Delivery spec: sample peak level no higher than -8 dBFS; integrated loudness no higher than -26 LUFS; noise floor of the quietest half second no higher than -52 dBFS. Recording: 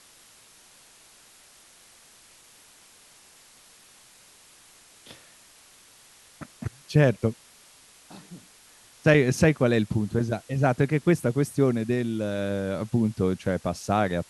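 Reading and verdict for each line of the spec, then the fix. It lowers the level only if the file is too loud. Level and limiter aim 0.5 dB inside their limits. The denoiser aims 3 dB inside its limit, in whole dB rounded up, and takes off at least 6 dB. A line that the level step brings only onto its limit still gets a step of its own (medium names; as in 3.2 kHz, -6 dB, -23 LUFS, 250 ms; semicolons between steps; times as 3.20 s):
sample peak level -6.5 dBFS: fail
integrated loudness -24.5 LUFS: fail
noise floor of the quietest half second -54 dBFS: pass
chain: trim -2 dB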